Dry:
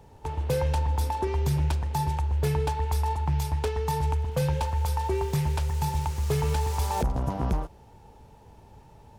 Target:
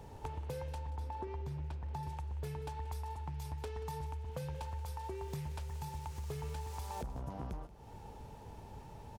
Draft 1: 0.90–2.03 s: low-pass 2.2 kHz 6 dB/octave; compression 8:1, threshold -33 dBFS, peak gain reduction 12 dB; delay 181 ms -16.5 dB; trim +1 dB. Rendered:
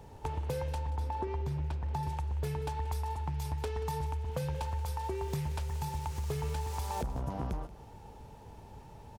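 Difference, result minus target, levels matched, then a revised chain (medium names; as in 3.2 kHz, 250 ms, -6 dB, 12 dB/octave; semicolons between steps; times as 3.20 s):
compression: peak gain reduction -6.5 dB
0.90–2.03 s: low-pass 2.2 kHz 6 dB/octave; compression 8:1, threshold -40.5 dBFS, peak gain reduction 18.5 dB; delay 181 ms -16.5 dB; trim +1 dB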